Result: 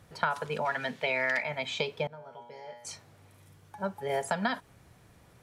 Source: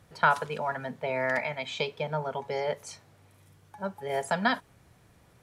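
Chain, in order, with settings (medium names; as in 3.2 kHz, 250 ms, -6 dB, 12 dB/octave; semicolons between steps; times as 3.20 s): 0.65–1.43 s: frequency weighting D; compression 6:1, threshold -27 dBFS, peak gain reduction 9.5 dB; 2.07–2.85 s: feedback comb 120 Hz, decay 0.92 s, harmonics all, mix 90%; trim +1.5 dB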